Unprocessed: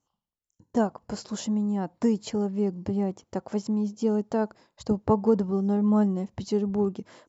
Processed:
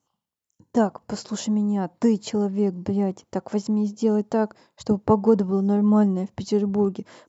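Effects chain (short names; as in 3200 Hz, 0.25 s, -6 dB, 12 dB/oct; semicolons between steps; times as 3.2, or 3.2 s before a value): HPF 89 Hz; gain +4 dB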